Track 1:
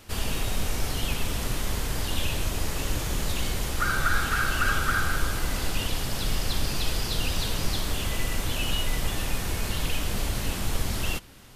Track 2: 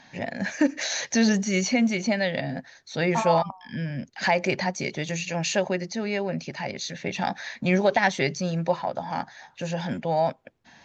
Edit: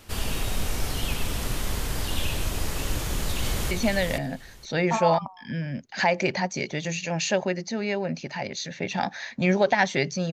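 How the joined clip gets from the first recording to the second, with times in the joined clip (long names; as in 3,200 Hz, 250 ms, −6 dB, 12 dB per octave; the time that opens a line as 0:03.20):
track 1
0:02.96–0:03.71: delay throw 470 ms, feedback 15%, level −4 dB
0:03.71: continue with track 2 from 0:01.95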